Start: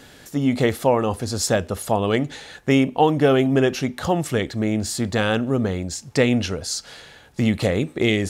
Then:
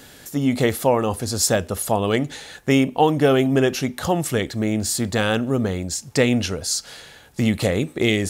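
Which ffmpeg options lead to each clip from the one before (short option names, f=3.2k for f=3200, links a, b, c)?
-af "highshelf=f=8.1k:g=10.5"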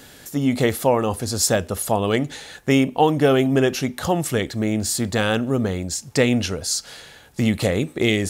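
-af anull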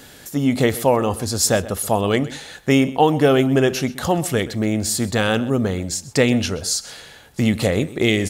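-filter_complex "[0:a]asplit=2[a][b];[b]adelay=128.3,volume=-17dB,highshelf=f=4k:g=-2.89[c];[a][c]amix=inputs=2:normalize=0,volume=1.5dB"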